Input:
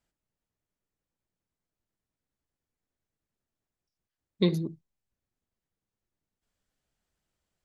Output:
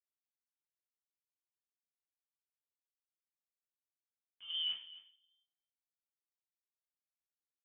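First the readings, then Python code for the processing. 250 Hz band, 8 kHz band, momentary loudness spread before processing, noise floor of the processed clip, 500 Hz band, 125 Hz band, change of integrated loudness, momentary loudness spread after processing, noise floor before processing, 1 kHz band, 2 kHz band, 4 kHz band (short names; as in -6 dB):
under -40 dB, n/a, 9 LU, under -85 dBFS, under -40 dB, under -40 dB, -8.0 dB, 18 LU, under -85 dBFS, under -15 dB, -11.0 dB, +5.5 dB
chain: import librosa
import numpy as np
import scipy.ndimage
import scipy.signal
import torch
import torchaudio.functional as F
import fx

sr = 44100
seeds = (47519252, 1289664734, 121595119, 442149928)

y = fx.delta_hold(x, sr, step_db=-44.0)
y = scipy.signal.sosfilt(scipy.signal.butter(2, 200.0, 'highpass', fs=sr, output='sos'), y)
y = fx.over_compress(y, sr, threshold_db=-38.0, ratio=-1.0)
y = fx.air_absorb(y, sr, metres=340.0)
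y = y + 10.0 ** (-17.0 / 20.0) * np.pad(y, (int(263 * sr / 1000.0), 0))[:len(y)]
y = fx.room_shoebox(y, sr, seeds[0], volume_m3=46.0, walls='mixed', distance_m=0.61)
y = fx.freq_invert(y, sr, carrier_hz=3300)
y = F.gain(torch.from_numpy(y), -7.0).numpy()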